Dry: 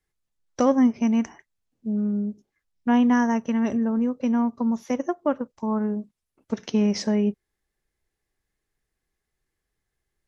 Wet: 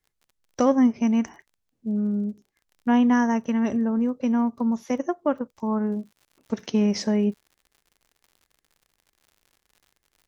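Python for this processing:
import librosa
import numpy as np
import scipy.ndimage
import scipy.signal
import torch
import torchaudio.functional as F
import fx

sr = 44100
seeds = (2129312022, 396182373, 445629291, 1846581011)

y = fx.dmg_crackle(x, sr, seeds[0], per_s=fx.steps((0.0, 22.0), (5.92, 100.0)), level_db=-45.0)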